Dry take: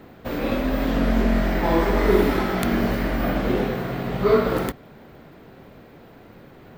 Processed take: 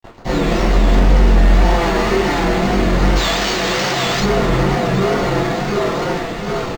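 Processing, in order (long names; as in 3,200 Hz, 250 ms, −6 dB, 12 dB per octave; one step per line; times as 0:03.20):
0:01.74–0:02.38: meter weighting curve A
feedback echo with a high-pass in the loop 739 ms, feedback 52%, high-pass 240 Hz, level −6 dB
automatic gain control gain up to 4 dB
notch filter 540 Hz, Q 12
comb filter 5.8 ms, depth 93%
fuzz pedal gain 42 dB, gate −35 dBFS
0:03.16–0:04.20: spectral tilt +3.5 dB per octave
convolution reverb RT60 0.40 s, pre-delay 3 ms, DRR −8 dB
tape wow and flutter 65 cents
linearly interpolated sample-rate reduction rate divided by 4×
level −16.5 dB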